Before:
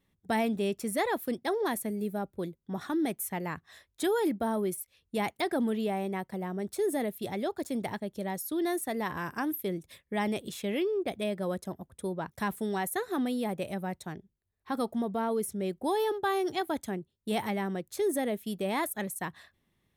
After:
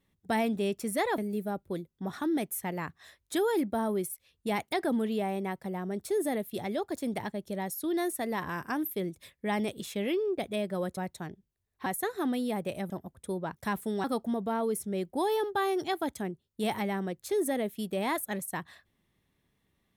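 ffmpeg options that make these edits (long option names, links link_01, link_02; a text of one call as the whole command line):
ffmpeg -i in.wav -filter_complex "[0:a]asplit=6[link_01][link_02][link_03][link_04][link_05][link_06];[link_01]atrim=end=1.182[link_07];[link_02]atrim=start=1.858:end=11.652[link_08];[link_03]atrim=start=13.828:end=14.722[link_09];[link_04]atrim=start=12.788:end=13.832[link_10];[link_05]atrim=start=11.648:end=12.792[link_11];[link_06]atrim=start=14.718[link_12];[link_07][link_08]acrossfade=duration=0.004:curve1=hsin:curve2=hsin[link_13];[link_13][link_09]acrossfade=duration=0.004:curve1=hsin:curve2=hsin[link_14];[link_14][link_10]acrossfade=duration=0.004:curve1=hsin:curve2=hsin[link_15];[link_15][link_11]acrossfade=duration=0.004:curve1=hsin:curve2=hsin[link_16];[link_16][link_12]acrossfade=duration=0.004:curve1=hsin:curve2=hsin" out.wav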